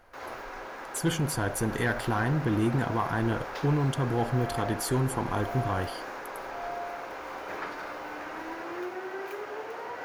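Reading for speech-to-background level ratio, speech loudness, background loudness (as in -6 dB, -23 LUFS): 8.5 dB, -29.0 LUFS, -37.5 LUFS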